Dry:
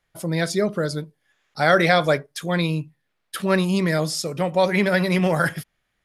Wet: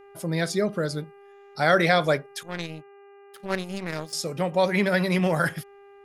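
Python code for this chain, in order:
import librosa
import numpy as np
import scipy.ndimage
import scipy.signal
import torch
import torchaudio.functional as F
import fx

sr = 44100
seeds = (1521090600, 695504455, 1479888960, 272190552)

y = fx.power_curve(x, sr, exponent=2.0, at=(2.43, 4.13))
y = fx.dmg_buzz(y, sr, base_hz=400.0, harmonics=7, level_db=-47.0, tilt_db=-8, odd_only=False)
y = F.gain(torch.from_numpy(y), -3.0).numpy()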